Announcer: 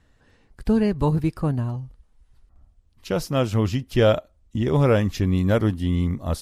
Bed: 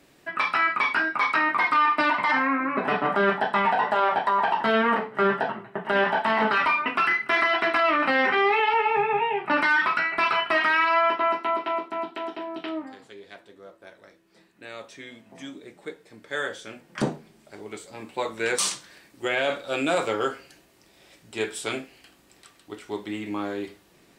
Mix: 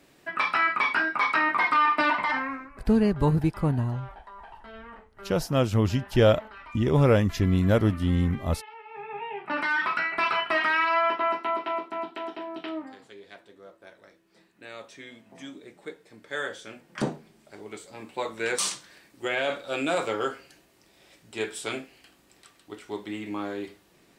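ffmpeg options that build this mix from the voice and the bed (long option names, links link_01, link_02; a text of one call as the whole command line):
ffmpeg -i stem1.wav -i stem2.wav -filter_complex "[0:a]adelay=2200,volume=-1.5dB[link_01];[1:a]volume=20dB,afade=type=out:start_time=2.11:duration=0.59:silence=0.0749894,afade=type=in:start_time=8.87:duration=1.17:silence=0.0891251[link_02];[link_01][link_02]amix=inputs=2:normalize=0" out.wav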